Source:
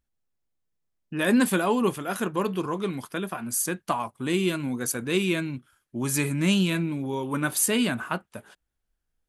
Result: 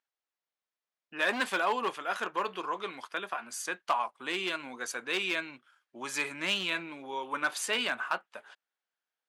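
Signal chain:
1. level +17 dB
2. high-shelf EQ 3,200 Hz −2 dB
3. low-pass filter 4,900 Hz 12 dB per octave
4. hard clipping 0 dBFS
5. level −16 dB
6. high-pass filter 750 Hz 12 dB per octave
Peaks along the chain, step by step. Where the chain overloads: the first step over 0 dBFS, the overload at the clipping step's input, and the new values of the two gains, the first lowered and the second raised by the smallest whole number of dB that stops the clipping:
+7.0, +6.0, +6.0, 0.0, −16.0, −14.0 dBFS
step 1, 6.0 dB
step 1 +11 dB, step 5 −10 dB

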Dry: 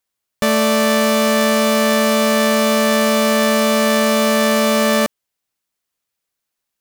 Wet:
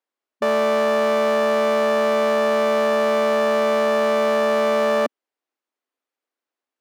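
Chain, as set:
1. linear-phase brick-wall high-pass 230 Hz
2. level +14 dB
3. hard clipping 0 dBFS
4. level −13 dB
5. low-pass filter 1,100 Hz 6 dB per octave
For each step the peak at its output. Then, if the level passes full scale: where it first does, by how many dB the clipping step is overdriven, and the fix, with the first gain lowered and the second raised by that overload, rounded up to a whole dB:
−7.0, +7.0, 0.0, −13.0, −13.0 dBFS
step 2, 7.0 dB
step 2 +7 dB, step 4 −6 dB

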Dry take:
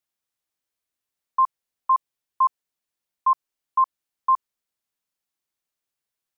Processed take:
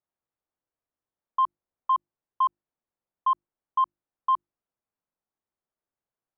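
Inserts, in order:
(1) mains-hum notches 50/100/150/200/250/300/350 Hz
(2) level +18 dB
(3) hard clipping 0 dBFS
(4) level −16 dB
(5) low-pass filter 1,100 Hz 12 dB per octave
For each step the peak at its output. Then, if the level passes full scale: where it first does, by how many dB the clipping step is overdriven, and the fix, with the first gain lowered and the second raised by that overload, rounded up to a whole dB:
−13.0, +5.0, 0.0, −16.0, −17.0 dBFS
step 2, 5.0 dB
step 2 +13 dB, step 4 −11 dB

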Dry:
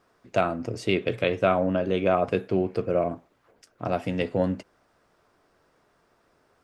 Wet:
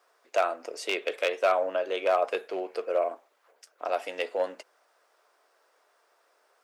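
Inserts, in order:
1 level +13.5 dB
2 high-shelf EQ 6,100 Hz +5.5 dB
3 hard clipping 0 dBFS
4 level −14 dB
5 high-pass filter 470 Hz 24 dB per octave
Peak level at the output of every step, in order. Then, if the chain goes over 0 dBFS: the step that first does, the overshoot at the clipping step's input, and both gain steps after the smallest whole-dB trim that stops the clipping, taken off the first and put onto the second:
+5.0, +5.5, 0.0, −14.0, −11.0 dBFS
step 1, 5.5 dB
step 1 +7.5 dB, step 4 −8 dB

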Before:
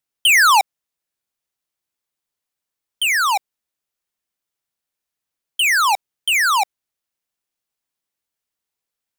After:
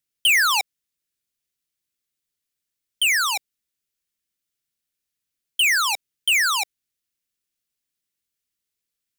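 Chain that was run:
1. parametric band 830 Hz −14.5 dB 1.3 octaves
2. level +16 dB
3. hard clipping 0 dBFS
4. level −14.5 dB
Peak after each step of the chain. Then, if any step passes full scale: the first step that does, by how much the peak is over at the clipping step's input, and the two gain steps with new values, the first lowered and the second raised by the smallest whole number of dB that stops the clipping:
−8.5, +7.5, 0.0, −14.5 dBFS
step 2, 7.5 dB
step 2 +8 dB, step 4 −6.5 dB

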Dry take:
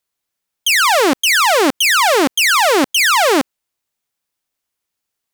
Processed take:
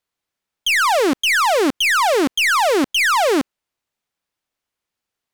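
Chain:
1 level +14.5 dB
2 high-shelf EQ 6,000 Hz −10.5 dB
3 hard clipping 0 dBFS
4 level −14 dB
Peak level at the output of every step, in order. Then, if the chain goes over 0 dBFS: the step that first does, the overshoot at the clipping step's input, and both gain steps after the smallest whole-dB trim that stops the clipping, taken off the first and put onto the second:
+7.0, +7.0, 0.0, −14.0 dBFS
step 1, 7.0 dB
step 1 +7.5 dB, step 4 −7 dB

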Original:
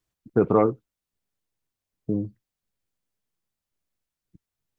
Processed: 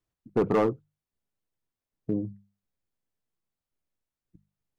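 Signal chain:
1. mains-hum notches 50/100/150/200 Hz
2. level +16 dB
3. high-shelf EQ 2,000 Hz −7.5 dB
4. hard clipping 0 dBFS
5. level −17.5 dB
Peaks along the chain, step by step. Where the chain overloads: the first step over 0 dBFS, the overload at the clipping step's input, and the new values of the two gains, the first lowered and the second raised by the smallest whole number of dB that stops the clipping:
−7.0, +9.0, +8.5, 0.0, −17.5 dBFS
step 2, 8.5 dB
step 2 +7 dB, step 5 −8.5 dB

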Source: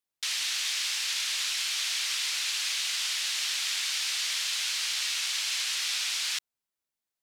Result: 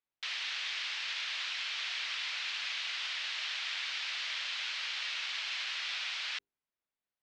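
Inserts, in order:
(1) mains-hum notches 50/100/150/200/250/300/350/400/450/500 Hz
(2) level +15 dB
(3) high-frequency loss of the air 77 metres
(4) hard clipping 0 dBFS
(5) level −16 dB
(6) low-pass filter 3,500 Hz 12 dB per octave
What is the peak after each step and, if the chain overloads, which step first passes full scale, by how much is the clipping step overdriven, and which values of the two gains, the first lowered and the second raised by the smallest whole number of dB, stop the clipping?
−16.5, −1.5, −4.5, −4.5, −20.5, −24.0 dBFS
no step passes full scale

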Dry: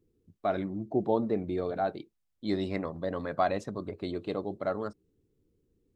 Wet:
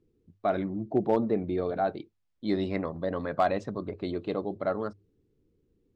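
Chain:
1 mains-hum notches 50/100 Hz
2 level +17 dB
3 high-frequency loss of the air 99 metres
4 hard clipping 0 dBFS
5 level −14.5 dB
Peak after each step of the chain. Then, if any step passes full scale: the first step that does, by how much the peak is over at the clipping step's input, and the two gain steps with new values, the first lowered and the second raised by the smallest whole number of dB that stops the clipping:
−14.0, +3.0, +3.0, 0.0, −14.5 dBFS
step 2, 3.0 dB
step 2 +14 dB, step 5 −11.5 dB

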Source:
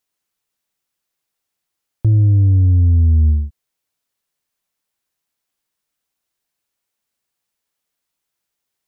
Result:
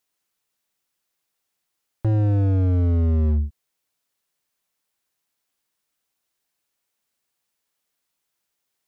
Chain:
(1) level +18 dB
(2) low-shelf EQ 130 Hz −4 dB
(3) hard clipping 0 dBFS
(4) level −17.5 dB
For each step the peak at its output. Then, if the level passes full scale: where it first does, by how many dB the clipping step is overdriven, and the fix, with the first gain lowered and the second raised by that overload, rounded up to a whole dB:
+9.0, +7.0, 0.0, −17.5 dBFS
step 1, 7.0 dB
step 1 +11 dB, step 4 −10.5 dB

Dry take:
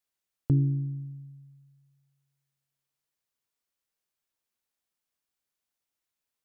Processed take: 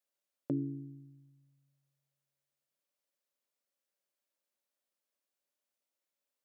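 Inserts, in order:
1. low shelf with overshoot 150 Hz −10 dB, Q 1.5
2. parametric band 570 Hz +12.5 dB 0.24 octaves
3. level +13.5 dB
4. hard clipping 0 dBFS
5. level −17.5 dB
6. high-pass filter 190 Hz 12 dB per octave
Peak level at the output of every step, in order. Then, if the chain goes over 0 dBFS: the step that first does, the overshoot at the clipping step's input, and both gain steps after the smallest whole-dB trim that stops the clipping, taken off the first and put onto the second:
−17.5, −16.0, −2.5, −2.5, −20.0, −23.0 dBFS
no step passes full scale

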